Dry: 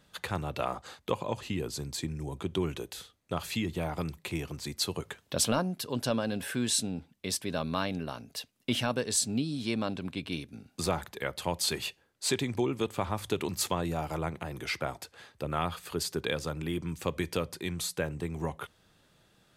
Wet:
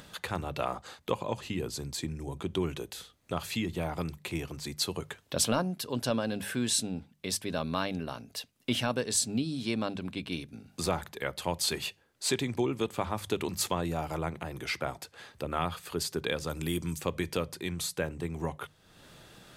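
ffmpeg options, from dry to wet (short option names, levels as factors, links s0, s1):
-filter_complex "[0:a]asplit=3[s0][s1][s2];[s0]afade=t=out:st=16.49:d=0.02[s3];[s1]bass=f=250:g=2,treble=f=4000:g=13,afade=t=in:st=16.49:d=0.02,afade=t=out:st=16.98:d=0.02[s4];[s2]afade=t=in:st=16.98:d=0.02[s5];[s3][s4][s5]amix=inputs=3:normalize=0,bandreject=f=50:t=h:w=6,bandreject=f=100:t=h:w=6,bandreject=f=150:t=h:w=6,bandreject=f=200:t=h:w=6,acompressor=mode=upward:threshold=0.00891:ratio=2.5"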